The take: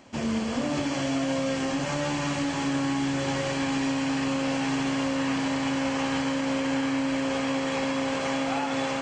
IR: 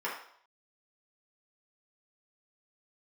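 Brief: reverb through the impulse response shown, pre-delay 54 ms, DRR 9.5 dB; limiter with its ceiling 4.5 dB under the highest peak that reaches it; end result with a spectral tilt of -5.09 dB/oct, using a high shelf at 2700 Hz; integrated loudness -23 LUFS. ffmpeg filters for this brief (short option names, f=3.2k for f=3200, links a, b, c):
-filter_complex "[0:a]highshelf=f=2.7k:g=-3.5,alimiter=limit=-22dB:level=0:latency=1,asplit=2[a][b];[1:a]atrim=start_sample=2205,adelay=54[c];[b][c]afir=irnorm=-1:irlink=0,volume=-16.5dB[d];[a][d]amix=inputs=2:normalize=0,volume=7dB"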